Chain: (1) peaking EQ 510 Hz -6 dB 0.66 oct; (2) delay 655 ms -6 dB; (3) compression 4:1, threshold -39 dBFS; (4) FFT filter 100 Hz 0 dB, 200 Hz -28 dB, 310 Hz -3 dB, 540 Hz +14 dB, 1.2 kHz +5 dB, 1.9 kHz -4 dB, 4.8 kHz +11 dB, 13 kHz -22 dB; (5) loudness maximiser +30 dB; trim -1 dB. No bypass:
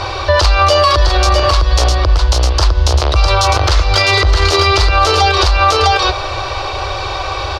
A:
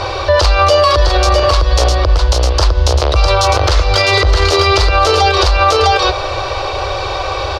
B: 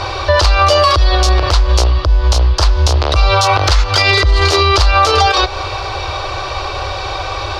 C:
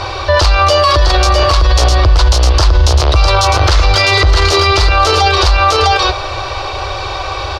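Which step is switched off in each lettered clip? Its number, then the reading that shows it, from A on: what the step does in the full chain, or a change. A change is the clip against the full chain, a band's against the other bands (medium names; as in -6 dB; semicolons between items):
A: 1, 500 Hz band +3.5 dB; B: 2, momentary loudness spread change +1 LU; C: 3, mean gain reduction 8.0 dB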